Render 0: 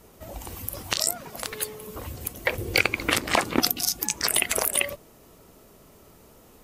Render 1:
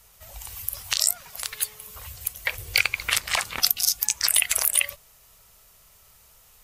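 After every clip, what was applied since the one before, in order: passive tone stack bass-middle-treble 10-0-10; gain +4 dB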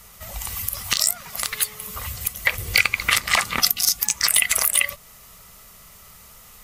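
in parallel at 0 dB: compressor, threshold -30 dBFS, peak gain reduction 15.5 dB; on the sum: soft clip -5.5 dBFS, distortion -15 dB; small resonant body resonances 200/1200/2000 Hz, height 8 dB, ringing for 25 ms; gain +2 dB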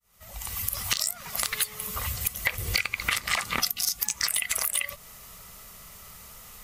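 opening faded in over 0.82 s; compressor 12:1, threshold -22 dBFS, peak gain reduction 11.5 dB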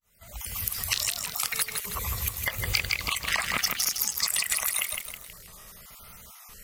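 random spectral dropouts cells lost 26%; vibrato 0.86 Hz 90 cents; lo-fi delay 0.16 s, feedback 55%, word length 7-bit, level -4 dB

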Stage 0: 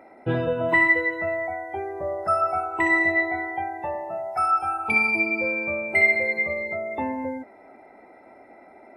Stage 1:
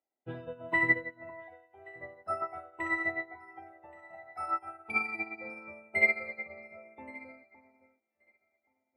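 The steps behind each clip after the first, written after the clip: echo with dull and thin repeats by turns 0.563 s, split 1400 Hz, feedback 65%, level -6 dB; upward expander 2.5:1, over -41 dBFS; gain -4.5 dB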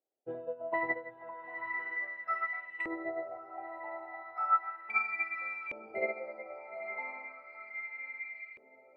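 diffused feedback echo 0.945 s, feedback 42%, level -7 dB; LFO band-pass saw up 0.35 Hz 430–2500 Hz; gain +6 dB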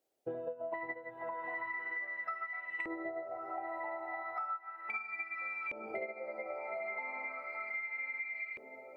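compressor 16:1, threshold -45 dBFS, peak gain reduction 23.5 dB; gain +8.5 dB

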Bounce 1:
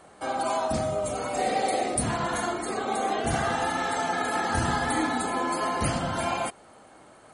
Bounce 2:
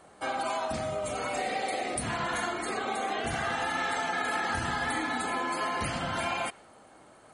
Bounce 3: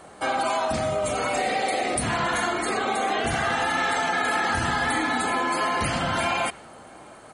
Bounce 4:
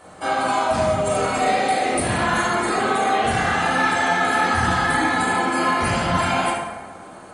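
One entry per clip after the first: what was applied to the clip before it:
compressor, threshold -27 dBFS, peak gain reduction 6 dB; dynamic EQ 2300 Hz, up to +8 dB, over -49 dBFS, Q 0.73; gain -3 dB
in parallel at -1.5 dB: limiter -28.5 dBFS, peak gain reduction 10.5 dB; on the sum: outdoor echo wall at 120 m, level -28 dB; gain +3.5 dB
plate-style reverb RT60 1.3 s, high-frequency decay 0.55×, DRR -5.5 dB; gain -2.5 dB

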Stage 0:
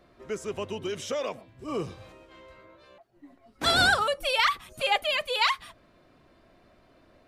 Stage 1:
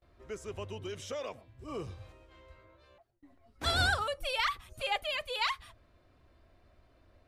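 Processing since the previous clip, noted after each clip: gate with hold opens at -51 dBFS; resonant low shelf 120 Hz +9.5 dB, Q 1.5; gain -7.5 dB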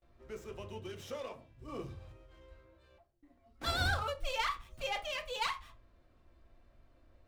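on a send at -4 dB: reverb RT60 0.25 s, pre-delay 3 ms; on the sum: running maximum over 3 samples; gain -5 dB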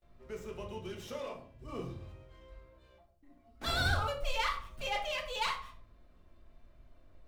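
shoebox room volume 480 m³, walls furnished, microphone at 1.4 m

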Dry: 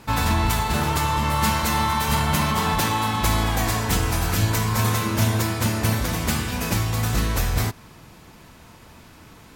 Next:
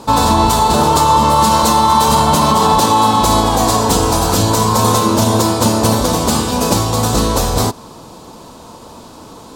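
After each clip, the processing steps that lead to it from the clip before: ten-band EQ 250 Hz +7 dB, 500 Hz +10 dB, 1000 Hz +11 dB, 2000 Hz -10 dB, 4000 Hz +8 dB, 8000 Hz +8 dB; maximiser +4.5 dB; gain -1 dB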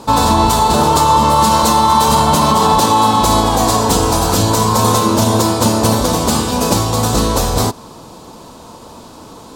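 nothing audible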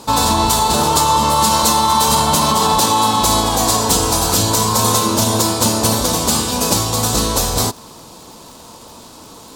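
crackle 110/s -32 dBFS; high shelf 2500 Hz +8.5 dB; gain -4.5 dB

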